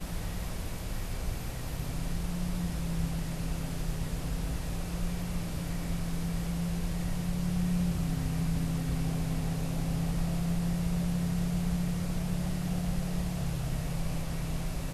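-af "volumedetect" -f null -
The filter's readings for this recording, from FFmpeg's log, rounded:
mean_volume: -31.1 dB
max_volume: -18.5 dB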